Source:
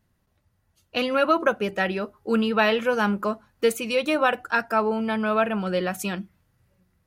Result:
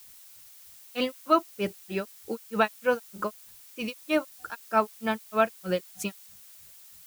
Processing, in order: grains 0.191 s, grains 3.2/s, spray 25 ms, pitch spread up and down by 0 st; added noise blue -51 dBFS

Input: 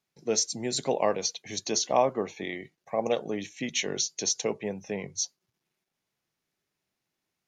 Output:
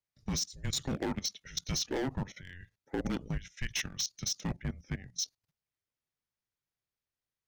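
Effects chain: hard clip -24.5 dBFS, distortion -8 dB; frequency shift -270 Hz; level quantiser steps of 16 dB

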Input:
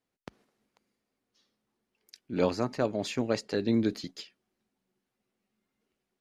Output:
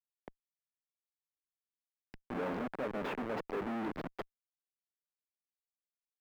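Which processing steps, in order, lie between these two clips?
Schmitt trigger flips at -36 dBFS; three-band isolator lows -17 dB, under 200 Hz, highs -23 dB, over 2400 Hz; gain +1 dB

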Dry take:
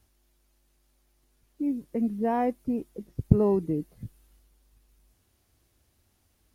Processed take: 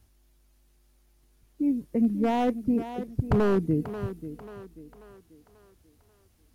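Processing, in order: wavefolder -19.5 dBFS; tone controls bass +5 dB, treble 0 dB; thinning echo 0.538 s, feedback 46%, high-pass 200 Hz, level -11 dB; gain +1 dB

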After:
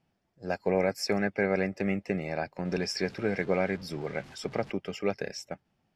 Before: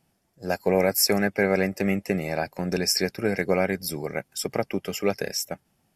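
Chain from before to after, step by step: 2.65–4.72 zero-crossing step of -37 dBFS; LPF 4200 Hz 12 dB/oct; gain -5 dB

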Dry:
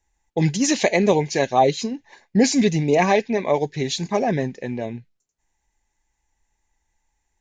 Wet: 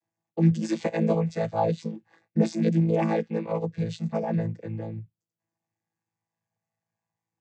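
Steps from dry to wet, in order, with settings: chord vocoder bare fifth, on A2; gain -4.5 dB

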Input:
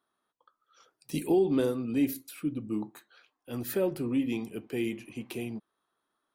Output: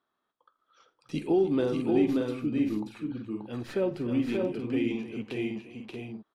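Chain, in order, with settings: tracing distortion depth 0.021 ms; LPF 4400 Hz 12 dB/oct; on a send: tapped delay 47/81/294/582/631 ms -19/-19.5/-14.5/-3.5/-8 dB

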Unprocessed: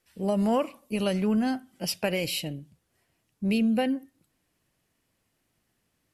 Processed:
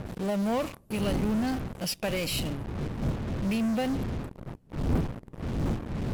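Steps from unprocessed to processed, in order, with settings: wind noise 190 Hz -30 dBFS; in parallel at -12 dB: fuzz box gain 48 dB, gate -41 dBFS; on the sum: gain -8 dB

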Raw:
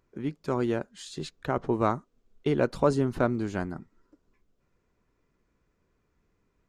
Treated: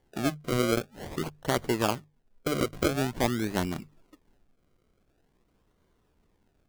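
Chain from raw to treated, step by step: decimation with a swept rate 34×, swing 100% 0.47 Hz; vocal rider within 5 dB 0.5 s; notches 50/100/150 Hz

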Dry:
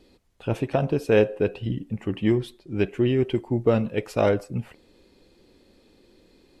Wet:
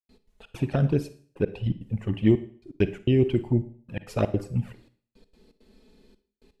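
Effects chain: low shelf 230 Hz +6 dB; envelope flanger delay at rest 4.8 ms, full sweep at -14 dBFS; step gate ".x.xx.xxxxxx.." 166 bpm -60 dB; Schroeder reverb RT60 0.48 s, DRR 13 dB

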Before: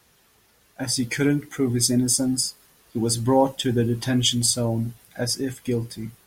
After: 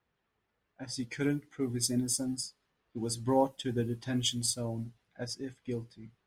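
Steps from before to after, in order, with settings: low-pass opened by the level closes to 2400 Hz, open at -17 dBFS; upward expander 1.5:1, over -34 dBFS; gain -8 dB

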